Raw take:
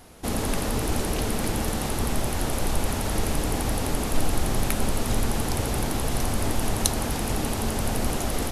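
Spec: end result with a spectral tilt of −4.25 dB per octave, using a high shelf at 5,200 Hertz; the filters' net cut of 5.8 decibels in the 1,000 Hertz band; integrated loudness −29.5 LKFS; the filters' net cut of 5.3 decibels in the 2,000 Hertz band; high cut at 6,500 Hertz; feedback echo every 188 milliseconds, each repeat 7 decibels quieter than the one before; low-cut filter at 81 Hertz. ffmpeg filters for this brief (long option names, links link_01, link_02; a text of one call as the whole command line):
ffmpeg -i in.wav -af "highpass=81,lowpass=6500,equalizer=frequency=1000:width_type=o:gain=-7,equalizer=frequency=2000:width_type=o:gain=-6,highshelf=frequency=5200:gain=8,aecho=1:1:188|376|564|752|940:0.447|0.201|0.0905|0.0407|0.0183,volume=-1.5dB" out.wav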